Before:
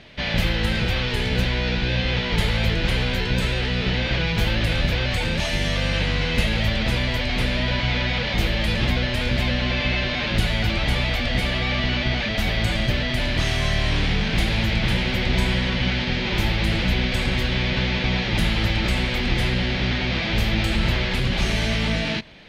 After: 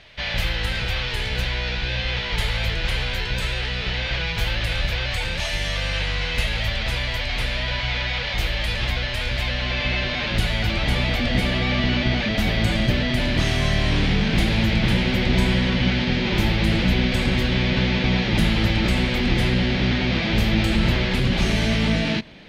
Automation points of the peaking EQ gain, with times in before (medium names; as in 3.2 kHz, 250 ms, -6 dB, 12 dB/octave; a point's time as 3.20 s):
peaking EQ 240 Hz 1.8 oct
9.44 s -12 dB
9.95 s -2.5 dB
10.60 s -2.5 dB
11.17 s +5 dB